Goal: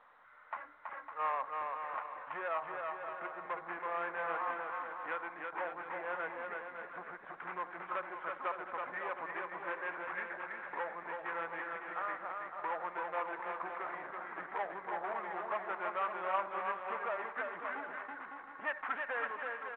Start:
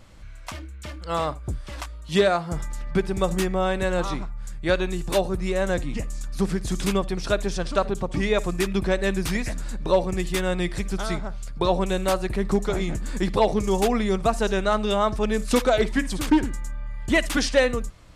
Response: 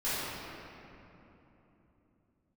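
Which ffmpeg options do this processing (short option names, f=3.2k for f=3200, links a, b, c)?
-filter_complex "[0:a]lowpass=f=1.8k:w=0.5412,lowpass=f=1.8k:w=1.3066,aemphasis=mode=production:type=50kf,acompressor=threshold=-21dB:ratio=5,asoftclip=type=tanh:threshold=-23.5dB,aecho=1:1:300|510|657|759.9|831.9:0.631|0.398|0.251|0.158|0.1,asplit=2[a][b];[1:a]atrim=start_sample=2205,asetrate=35721,aresample=44100,lowpass=f=1.4k:w=0.5412,lowpass=f=1.4k:w=1.3066[c];[b][c]afir=irnorm=-1:irlink=0,volume=-31dB[d];[a][d]amix=inputs=2:normalize=0,asetrate=40517,aresample=44100,asuperpass=centerf=1400:order=4:qfactor=0.88,volume=-1dB" -ar 8000 -c:a pcm_mulaw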